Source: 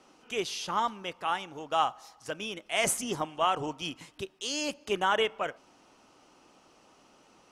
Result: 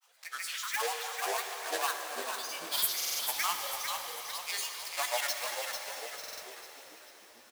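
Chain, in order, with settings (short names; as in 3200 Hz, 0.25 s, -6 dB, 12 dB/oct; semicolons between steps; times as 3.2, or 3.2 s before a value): block floating point 3-bit; Chebyshev high-pass 880 Hz, order 4; high shelf 5300 Hz +10.5 dB; grains, spray 0.1 s, pitch spread up and down by 12 st; on a send: frequency-shifting echo 0.446 s, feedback 47%, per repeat -74 Hz, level -6 dB; on the sum: plate-style reverb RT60 4.9 s, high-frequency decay 0.95×, DRR 4 dB; stuck buffer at 2.96/6.19, samples 2048, times 4; gain -5 dB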